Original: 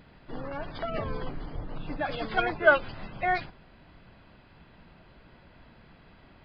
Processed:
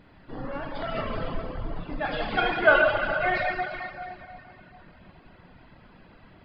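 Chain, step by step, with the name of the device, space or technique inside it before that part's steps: swimming-pool hall (reverberation RT60 2.9 s, pre-delay 23 ms, DRR -3.5 dB; treble shelf 3.7 kHz -6.5 dB); hum notches 60/120 Hz; reverb removal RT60 0.65 s; dynamic bell 3.1 kHz, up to +5 dB, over -45 dBFS, Q 0.84

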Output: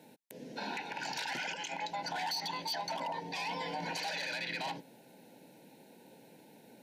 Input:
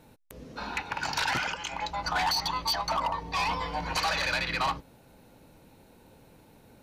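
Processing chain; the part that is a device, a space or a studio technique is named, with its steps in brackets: PA system with an anti-feedback notch (high-pass 170 Hz 24 dB/octave; Butterworth band-stop 1.2 kHz, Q 2.2; peak limiter -29 dBFS, peak gain reduction 11 dB)

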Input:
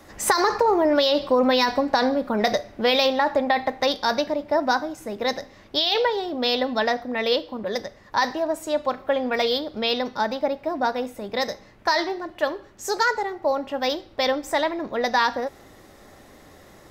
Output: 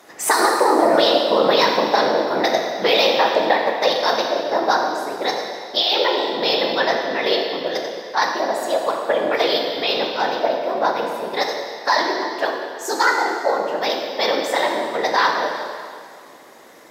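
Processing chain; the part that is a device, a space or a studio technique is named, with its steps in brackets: whispering ghost (whisper effect; high-pass 350 Hz 12 dB/octave; reverberation RT60 2.1 s, pre-delay 15 ms, DRR 1.5 dB); trim +2.5 dB

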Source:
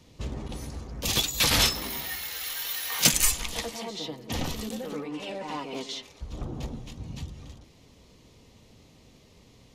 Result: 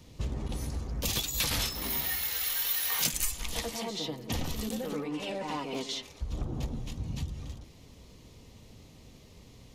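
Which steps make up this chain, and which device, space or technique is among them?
ASMR close-microphone chain (bass shelf 130 Hz +6 dB; compression 5:1, threshold -29 dBFS, peak gain reduction 13.5 dB; treble shelf 11 kHz +7 dB)

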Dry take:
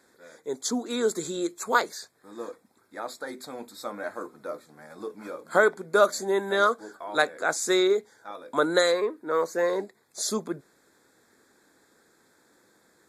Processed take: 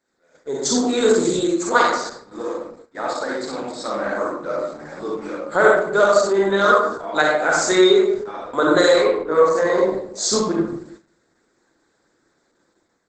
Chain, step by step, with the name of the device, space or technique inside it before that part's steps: 3.34–4.49 s: hum notches 60/120/180/240/300/360/420/480 Hz; speakerphone in a meeting room (reverberation RT60 0.75 s, pre-delay 39 ms, DRR -4 dB; level rider gain up to 7 dB; gate -40 dBFS, range -13 dB; Opus 12 kbps 48 kHz)

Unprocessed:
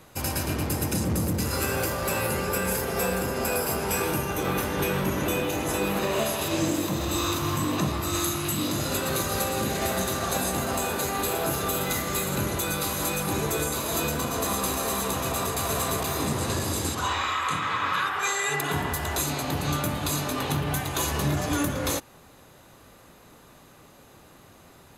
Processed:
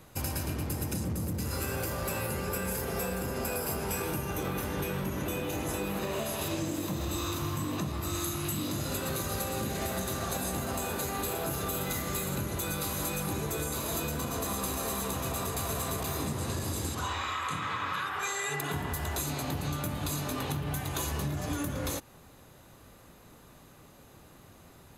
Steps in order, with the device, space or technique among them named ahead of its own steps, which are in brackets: ASMR close-microphone chain (bass shelf 210 Hz +6 dB; compression, threshold -25 dBFS, peak gain reduction 8 dB; treble shelf 11 kHz +4.5 dB); trim -4.5 dB

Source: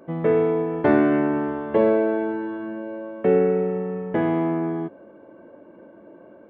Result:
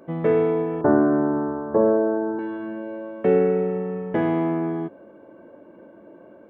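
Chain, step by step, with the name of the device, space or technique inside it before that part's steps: exciter from parts (in parallel at -14 dB: high-pass 2.1 kHz + saturation -38.5 dBFS, distortion -10 dB); 0.81–2.39 s: on the sum: steep low-pass 1.5 kHz 48 dB/octave

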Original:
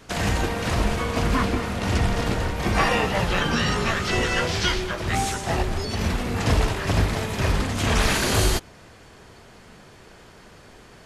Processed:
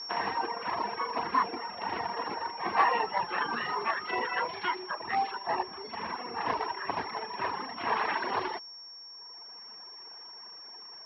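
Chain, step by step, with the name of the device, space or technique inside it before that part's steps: toy sound module (decimation joined by straight lines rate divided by 4×; class-D stage that switches slowly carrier 5.5 kHz; cabinet simulation 560–4600 Hz, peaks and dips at 580 Hz -9 dB, 960 Hz +8 dB, 1.4 kHz -6 dB, 2.4 kHz -5 dB, 3.4 kHz -5 dB); reverb removal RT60 1.7 s

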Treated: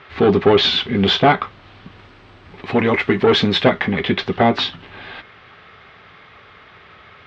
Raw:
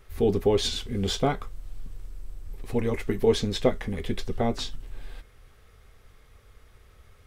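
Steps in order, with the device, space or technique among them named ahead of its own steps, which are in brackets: overdrive pedal into a guitar cabinet (overdrive pedal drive 20 dB, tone 3.9 kHz, clips at -7 dBFS; cabinet simulation 100–3800 Hz, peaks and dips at 100 Hz +3 dB, 170 Hz +7 dB, 490 Hz -7 dB); 1.95–3.62 s: peaking EQ 9.7 kHz +4.5 dB -> +11 dB 0.69 oct; trim +6.5 dB

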